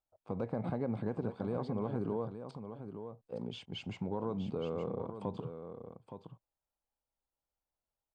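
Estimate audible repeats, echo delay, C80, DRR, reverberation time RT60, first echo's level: 1, 868 ms, no reverb, no reverb, no reverb, -9.0 dB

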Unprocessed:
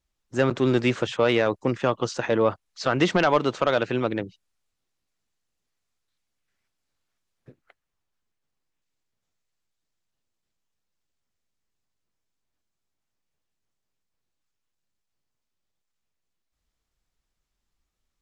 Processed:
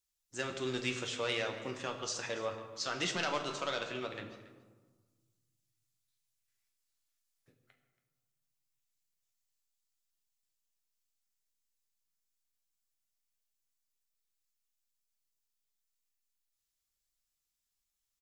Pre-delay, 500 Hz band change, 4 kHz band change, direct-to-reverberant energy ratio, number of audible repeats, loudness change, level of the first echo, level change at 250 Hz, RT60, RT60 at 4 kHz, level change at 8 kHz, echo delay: 11 ms, -16.0 dB, -5.0 dB, 3.0 dB, 1, -13.0 dB, -19.0 dB, -17.5 dB, 1.4 s, 0.85 s, 0.0 dB, 279 ms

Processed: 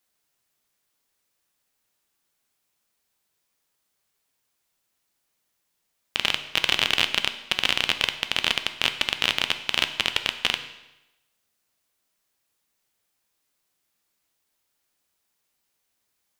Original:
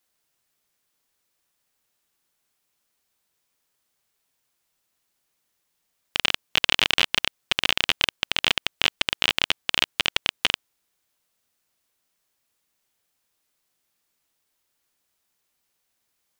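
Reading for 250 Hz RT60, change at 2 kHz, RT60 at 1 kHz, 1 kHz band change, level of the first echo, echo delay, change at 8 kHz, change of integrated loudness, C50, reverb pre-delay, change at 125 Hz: 0.90 s, -0.5 dB, 0.95 s, -0.5 dB, no echo, no echo, -0.5 dB, -0.5 dB, 11.5 dB, 8 ms, -0.5 dB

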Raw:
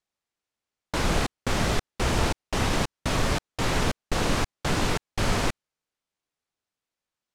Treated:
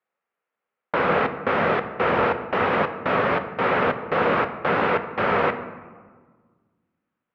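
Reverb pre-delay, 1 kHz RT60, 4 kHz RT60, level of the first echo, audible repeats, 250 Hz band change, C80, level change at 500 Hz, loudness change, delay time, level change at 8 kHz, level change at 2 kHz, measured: 3 ms, 1.5 s, 0.80 s, no echo, no echo, +1.5 dB, 12.5 dB, +9.0 dB, +5.0 dB, no echo, under -30 dB, +6.5 dB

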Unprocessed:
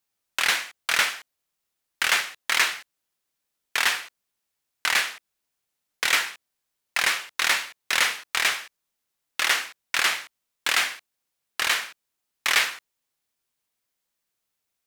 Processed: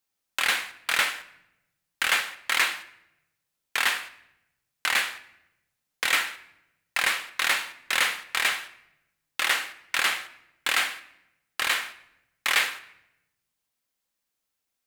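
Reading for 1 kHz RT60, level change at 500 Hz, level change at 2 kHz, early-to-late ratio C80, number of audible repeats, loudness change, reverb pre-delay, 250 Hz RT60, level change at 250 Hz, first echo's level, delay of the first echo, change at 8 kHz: 0.75 s, -1.5 dB, -1.5 dB, 17.5 dB, no echo, -2.0 dB, 4 ms, 1.2 s, -0.5 dB, no echo, no echo, -3.5 dB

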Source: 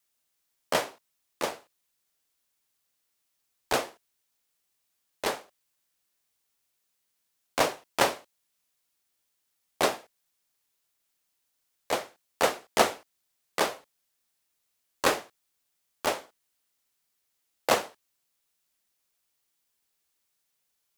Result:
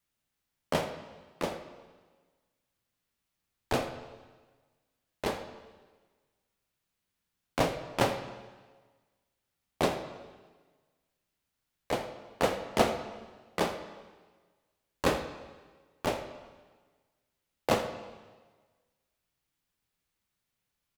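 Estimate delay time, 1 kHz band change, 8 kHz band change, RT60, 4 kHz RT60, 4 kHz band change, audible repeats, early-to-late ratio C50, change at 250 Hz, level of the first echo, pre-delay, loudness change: 82 ms, -3.5 dB, -8.5 dB, 1.4 s, 1.3 s, -5.5 dB, 1, 9.0 dB, +3.0 dB, -17.0 dB, 6 ms, -3.5 dB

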